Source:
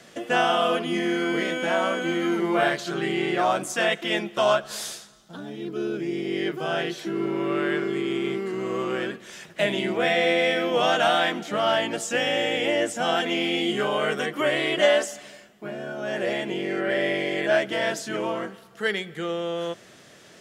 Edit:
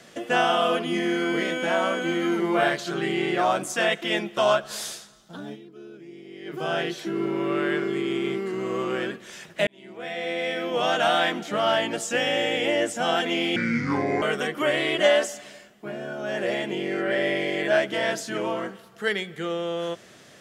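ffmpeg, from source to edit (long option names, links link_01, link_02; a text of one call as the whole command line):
ffmpeg -i in.wav -filter_complex "[0:a]asplit=6[link_01][link_02][link_03][link_04][link_05][link_06];[link_01]atrim=end=5.94,asetpts=PTS-STARTPTS,afade=type=out:start_time=5.53:duration=0.41:curve=exp:silence=0.177828[link_07];[link_02]atrim=start=5.94:end=6.13,asetpts=PTS-STARTPTS,volume=-15dB[link_08];[link_03]atrim=start=6.13:end=9.67,asetpts=PTS-STARTPTS,afade=type=in:duration=0.41:curve=exp:silence=0.177828,afade=type=out:start_time=3.536:duration=0.004:curve=hsin[link_09];[link_04]atrim=start=9.67:end=13.564,asetpts=PTS-STARTPTS,afade=type=in:duration=1.54[link_10];[link_05]atrim=start=13.56:end=14.01,asetpts=PTS-STARTPTS,asetrate=29988,aresample=44100[link_11];[link_06]atrim=start=14.006[link_12];[link_07][link_08][link_09][link_10]concat=n=4:v=0:a=1[link_13];[link_13][link_11]acrossfade=duration=0.004:curve1=hsin:curve2=hsin[link_14];[link_14][link_12]acrossfade=duration=0.004:curve1=hsin:curve2=hsin" out.wav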